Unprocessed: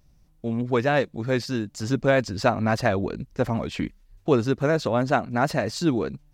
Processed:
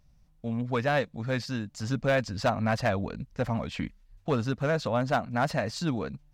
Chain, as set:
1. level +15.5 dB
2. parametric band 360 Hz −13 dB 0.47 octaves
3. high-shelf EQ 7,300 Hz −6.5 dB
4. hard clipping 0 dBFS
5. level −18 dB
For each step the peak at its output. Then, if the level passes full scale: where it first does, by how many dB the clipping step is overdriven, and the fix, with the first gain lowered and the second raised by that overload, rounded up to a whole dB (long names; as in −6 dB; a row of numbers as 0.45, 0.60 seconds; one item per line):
+8.5, +6.5, +6.5, 0.0, −18.0 dBFS
step 1, 6.5 dB
step 1 +8.5 dB, step 5 −11 dB